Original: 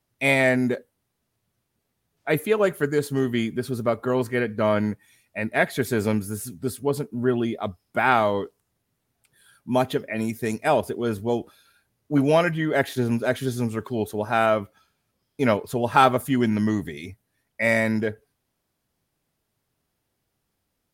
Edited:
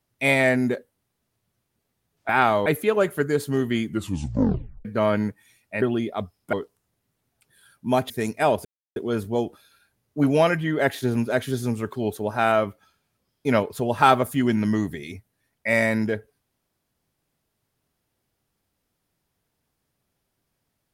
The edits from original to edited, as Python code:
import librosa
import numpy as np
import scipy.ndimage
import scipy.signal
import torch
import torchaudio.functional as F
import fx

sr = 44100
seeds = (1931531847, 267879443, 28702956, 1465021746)

y = fx.edit(x, sr, fx.tape_stop(start_s=3.48, length_s=1.0),
    fx.cut(start_s=5.45, length_s=1.83),
    fx.move(start_s=7.99, length_s=0.37, to_s=2.29),
    fx.cut(start_s=9.93, length_s=0.42),
    fx.insert_silence(at_s=10.9, length_s=0.31), tone=tone)